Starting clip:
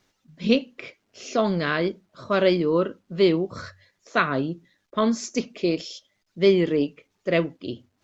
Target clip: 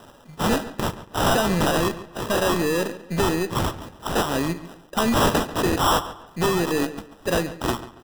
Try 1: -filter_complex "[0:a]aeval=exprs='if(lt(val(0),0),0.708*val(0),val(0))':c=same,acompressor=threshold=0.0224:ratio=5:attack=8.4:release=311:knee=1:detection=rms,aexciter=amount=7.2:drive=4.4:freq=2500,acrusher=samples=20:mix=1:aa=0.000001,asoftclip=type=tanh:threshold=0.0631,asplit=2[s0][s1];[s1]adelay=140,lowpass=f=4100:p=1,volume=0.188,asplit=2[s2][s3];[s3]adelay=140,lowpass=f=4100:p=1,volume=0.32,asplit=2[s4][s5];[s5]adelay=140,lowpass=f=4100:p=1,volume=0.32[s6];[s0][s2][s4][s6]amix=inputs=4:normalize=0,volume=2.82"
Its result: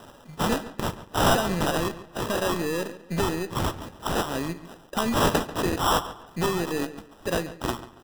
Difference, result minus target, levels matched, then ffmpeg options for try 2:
compression: peak gain reduction +7 dB
-filter_complex "[0:a]aeval=exprs='if(lt(val(0),0),0.708*val(0),val(0))':c=same,acompressor=threshold=0.0596:ratio=5:attack=8.4:release=311:knee=1:detection=rms,aexciter=amount=7.2:drive=4.4:freq=2500,acrusher=samples=20:mix=1:aa=0.000001,asoftclip=type=tanh:threshold=0.0631,asplit=2[s0][s1];[s1]adelay=140,lowpass=f=4100:p=1,volume=0.188,asplit=2[s2][s3];[s3]adelay=140,lowpass=f=4100:p=1,volume=0.32,asplit=2[s4][s5];[s5]adelay=140,lowpass=f=4100:p=1,volume=0.32[s6];[s0][s2][s4][s6]amix=inputs=4:normalize=0,volume=2.82"

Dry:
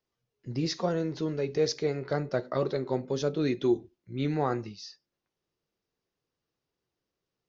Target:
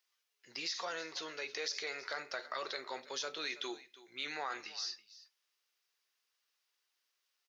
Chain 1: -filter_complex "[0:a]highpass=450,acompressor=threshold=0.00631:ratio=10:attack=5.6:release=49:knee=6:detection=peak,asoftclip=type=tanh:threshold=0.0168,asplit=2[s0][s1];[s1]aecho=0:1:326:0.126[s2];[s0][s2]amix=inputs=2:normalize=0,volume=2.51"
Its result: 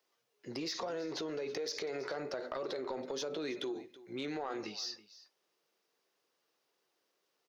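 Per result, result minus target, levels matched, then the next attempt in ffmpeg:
saturation: distortion +17 dB; 2 kHz band -6.5 dB
-filter_complex "[0:a]highpass=450,acompressor=threshold=0.00631:ratio=10:attack=5.6:release=49:knee=6:detection=peak,asoftclip=type=tanh:threshold=0.0531,asplit=2[s0][s1];[s1]aecho=0:1:326:0.126[s2];[s0][s2]amix=inputs=2:normalize=0,volume=2.51"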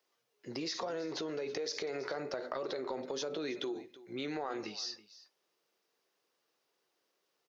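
2 kHz band -6.5 dB
-filter_complex "[0:a]highpass=1600,acompressor=threshold=0.00631:ratio=10:attack=5.6:release=49:knee=6:detection=peak,asoftclip=type=tanh:threshold=0.0531,asplit=2[s0][s1];[s1]aecho=0:1:326:0.126[s2];[s0][s2]amix=inputs=2:normalize=0,volume=2.51"

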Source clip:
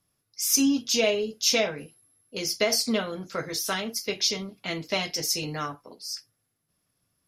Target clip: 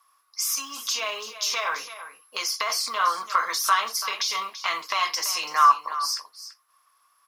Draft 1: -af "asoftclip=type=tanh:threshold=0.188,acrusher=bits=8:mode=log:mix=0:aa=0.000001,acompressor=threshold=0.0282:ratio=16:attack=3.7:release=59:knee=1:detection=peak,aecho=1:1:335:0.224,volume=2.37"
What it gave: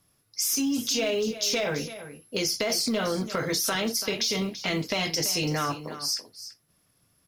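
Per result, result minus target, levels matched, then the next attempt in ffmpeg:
1 kHz band -11.0 dB; saturation: distortion +11 dB
-af "asoftclip=type=tanh:threshold=0.188,acrusher=bits=8:mode=log:mix=0:aa=0.000001,acompressor=threshold=0.0282:ratio=16:attack=3.7:release=59:knee=1:detection=peak,highpass=f=1100:t=q:w=12,aecho=1:1:335:0.224,volume=2.37"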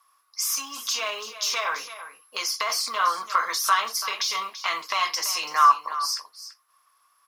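saturation: distortion +11 dB
-af "asoftclip=type=tanh:threshold=0.398,acrusher=bits=8:mode=log:mix=0:aa=0.000001,acompressor=threshold=0.0282:ratio=16:attack=3.7:release=59:knee=1:detection=peak,highpass=f=1100:t=q:w=12,aecho=1:1:335:0.224,volume=2.37"

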